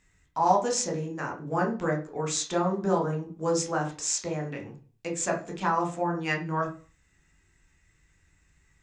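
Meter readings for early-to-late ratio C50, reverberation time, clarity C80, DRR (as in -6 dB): 9.5 dB, 0.40 s, 15.0 dB, 0.0 dB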